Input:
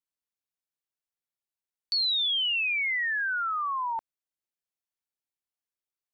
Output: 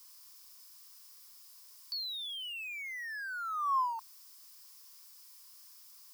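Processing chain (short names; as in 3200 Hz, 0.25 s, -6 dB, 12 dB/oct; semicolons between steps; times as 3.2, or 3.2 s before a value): switching spikes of -34 dBFS; ladder high-pass 1000 Hz, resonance 80%; bell 5100 Hz +12 dB 0.31 oct; gain -3.5 dB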